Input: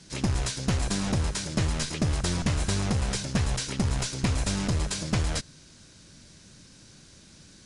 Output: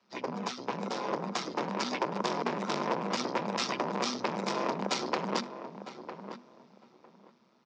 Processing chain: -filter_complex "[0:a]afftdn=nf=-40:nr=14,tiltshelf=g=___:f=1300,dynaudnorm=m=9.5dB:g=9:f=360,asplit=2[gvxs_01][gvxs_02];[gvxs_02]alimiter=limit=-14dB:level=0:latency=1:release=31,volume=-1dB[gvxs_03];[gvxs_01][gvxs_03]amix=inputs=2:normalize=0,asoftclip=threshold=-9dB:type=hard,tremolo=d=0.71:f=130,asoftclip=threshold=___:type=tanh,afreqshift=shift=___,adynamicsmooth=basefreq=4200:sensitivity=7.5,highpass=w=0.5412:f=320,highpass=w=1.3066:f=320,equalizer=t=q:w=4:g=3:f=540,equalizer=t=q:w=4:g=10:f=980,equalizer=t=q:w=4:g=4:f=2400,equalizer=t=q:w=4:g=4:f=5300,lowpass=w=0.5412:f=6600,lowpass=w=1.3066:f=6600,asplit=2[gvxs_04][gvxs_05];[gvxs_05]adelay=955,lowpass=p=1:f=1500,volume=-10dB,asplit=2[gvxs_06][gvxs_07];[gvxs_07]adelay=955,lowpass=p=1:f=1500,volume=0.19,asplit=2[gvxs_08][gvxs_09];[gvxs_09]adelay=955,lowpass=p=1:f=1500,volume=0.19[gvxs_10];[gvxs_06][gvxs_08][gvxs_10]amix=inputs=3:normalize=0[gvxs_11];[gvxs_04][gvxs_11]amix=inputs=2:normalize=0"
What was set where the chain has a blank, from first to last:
7.5, -17.5dB, -250